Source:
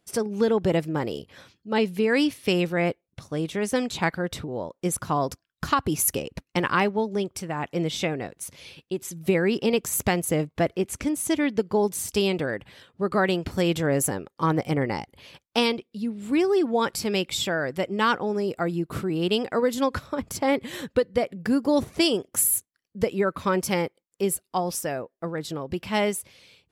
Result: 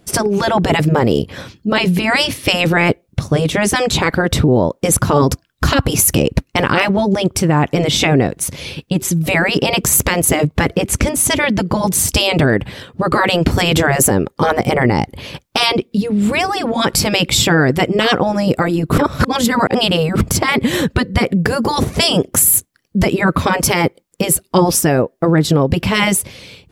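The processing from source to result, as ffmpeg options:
-filter_complex "[0:a]asplit=3[a][b][c];[a]atrim=end=18.982[d];[b]atrim=start=18.978:end=20.212,asetpts=PTS-STARTPTS,areverse[e];[c]atrim=start=20.208[f];[d][e]acrossfade=d=0.004:c1=hsin:c2=hsin[g];[g][f]acrossfade=d=0.004:c1=hsin:c2=hsin,afftfilt=real='re*lt(hypot(re,im),0.282)':imag='im*lt(hypot(re,im),0.282)':win_size=1024:overlap=0.75,lowshelf=f=450:g=9,alimiter=level_in=16.5dB:limit=-1dB:release=50:level=0:latency=1,volume=-1dB"

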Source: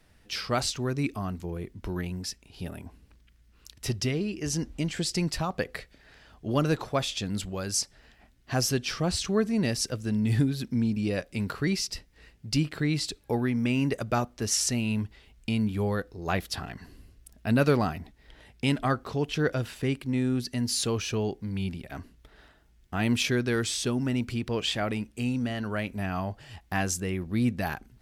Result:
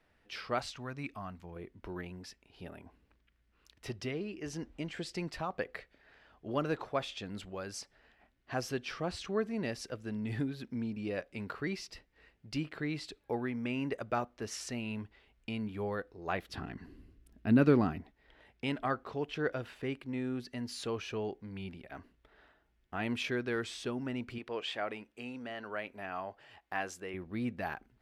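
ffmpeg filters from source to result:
-filter_complex "[0:a]asettb=1/sr,asplit=3[a][b][c];[a]atrim=end=0.594[d];[b]atrim=start=0.59:end=1.56,asetpts=PTS-STARTPTS,afade=t=in:d=0.004:c=qsin,afade=t=out:st=0.966:d=0.004:c=qsin,equalizer=f=380:w=1.8:g=-10.5[e];[c]atrim=start=1.556[f];[d][e]acrossfade=d=0.004:c1=hsin:c2=qsin[g];[g][f]acrossfade=d=0.004:c1=qsin:c2=hsin,asettb=1/sr,asplit=3[h][i][j];[h]atrim=end=16.494[k];[i]atrim=start=16.49:end=18.01,asetpts=PTS-STARTPTS,afade=t=in:d=0.004:c=qsin,afade=t=out:st=1.516:d=0.004:c=qsin,lowshelf=f=420:t=q:w=1.5:g=8[l];[j]atrim=start=18.006[m];[k][l]acrossfade=d=0.004:c1=hsin:c2=qsin[n];[n][m]acrossfade=d=0.004:c1=qsin:c2=hsin,asettb=1/sr,asplit=3[o][p][q];[o]atrim=end=24.384[r];[p]atrim=start=24.38:end=27.14,asetpts=PTS-STARTPTS,afade=t=in:d=0.004:c=qsin,afade=t=out:st=2.756:d=0.004:c=qsin,bass=f=250:g=-11,treble=f=4k:g=-1[s];[q]atrim=start=27.136[t];[r][s]acrossfade=d=0.004:c1=hsin:c2=qsin[u];[u][t]acrossfade=d=0.004:c1=qsin:c2=hsin,bass=f=250:g=-9,treble=f=4k:g=-14,volume=-5dB"

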